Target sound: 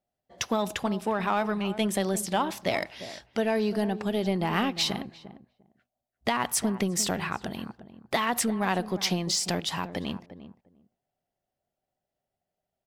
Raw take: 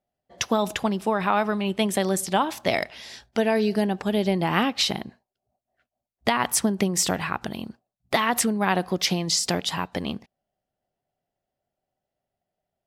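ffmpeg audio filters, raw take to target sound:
ffmpeg -i in.wav -filter_complex "[0:a]asplit=2[link_01][link_02];[link_02]asoftclip=type=tanh:threshold=-23.5dB,volume=-4.5dB[link_03];[link_01][link_03]amix=inputs=2:normalize=0,asplit=2[link_04][link_05];[link_05]adelay=350,lowpass=frequency=900:poles=1,volume=-12dB,asplit=2[link_06][link_07];[link_07]adelay=350,lowpass=frequency=900:poles=1,volume=0.16[link_08];[link_04][link_06][link_08]amix=inputs=3:normalize=0,volume=-6.5dB" out.wav

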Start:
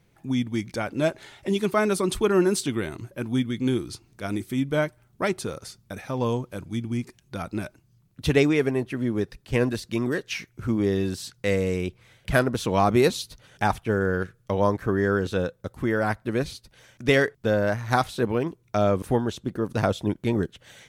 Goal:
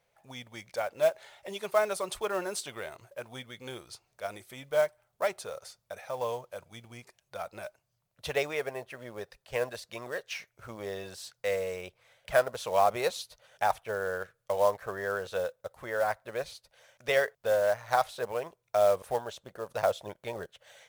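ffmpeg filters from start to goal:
ffmpeg -i in.wav -af "lowshelf=frequency=410:width_type=q:width=3:gain=-12,acrusher=bits=5:mode=log:mix=0:aa=0.000001,volume=-7dB" out.wav

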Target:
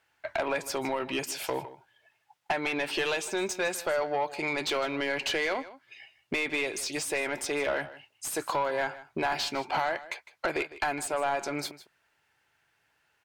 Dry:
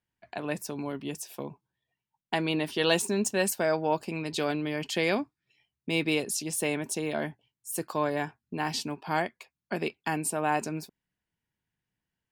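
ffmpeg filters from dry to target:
ffmpeg -i in.wav -filter_complex "[0:a]equalizer=frequency=220:width=1.4:gain=-12.5,acompressor=threshold=-40dB:ratio=16,asplit=2[link_01][link_02];[link_02]highpass=frequency=720:poles=1,volume=26dB,asoftclip=type=tanh:threshold=-18dB[link_03];[link_01][link_03]amix=inputs=2:normalize=0,lowpass=frequency=2800:poles=1,volume=-6dB,asplit=2[link_04][link_05];[link_05]aecho=0:1:145:0.15[link_06];[link_04][link_06]amix=inputs=2:normalize=0,asetrate=41013,aresample=44100,volume=2dB" out.wav

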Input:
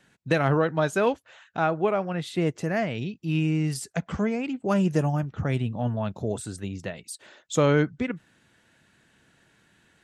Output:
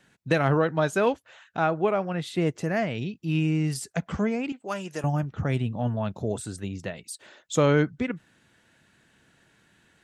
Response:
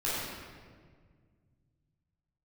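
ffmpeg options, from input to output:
-filter_complex "[0:a]asettb=1/sr,asplit=3[link_01][link_02][link_03];[link_01]atrim=end=4.524[link_04];[link_02]atrim=start=4.52:end=5.04,asetpts=PTS-STARTPTS,afade=type=in:duration=0.004:curve=qsin,afade=type=out:start_time=0.516:duration=0.004:curve=qsin,highpass=frequency=1100:poles=1[link_05];[link_03]atrim=start=5.036[link_06];[link_04][link_05]acrossfade=duration=0.004:curve1=hsin:curve2=qsin[link_07];[link_07][link_06]acrossfade=duration=0.004:curve1=qsin:curve2=hsin"

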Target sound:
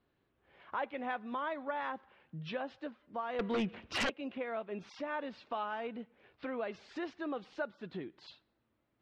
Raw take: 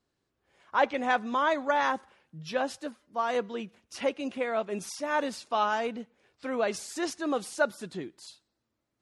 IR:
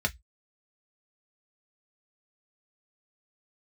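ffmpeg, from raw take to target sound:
-filter_complex "[0:a]lowpass=frequency=3400:width=0.5412,lowpass=frequency=3400:width=1.3066,acompressor=threshold=-45dB:ratio=2.5,asettb=1/sr,asplit=3[link_01][link_02][link_03];[link_01]atrim=end=3.394[link_04];[link_02]atrim=start=3.39:end=4.1,asetpts=PTS-STARTPTS,afade=type=in:duration=0.004:curve=qsin,afade=type=out:start_time=0.706:duration=0.004:curve=qsin,aeval=exprs='0.0266*sin(PI/2*2.82*val(0)/0.0266)':channel_layout=same[link_05];[link_03]atrim=start=4.096[link_06];[link_04][link_05]acrossfade=duration=0.004:curve1=hsin:curve2=qsin[link_07];[link_07][link_06]acrossfade=duration=0.004:curve1=qsin:curve2=hsin,volume=3dB"

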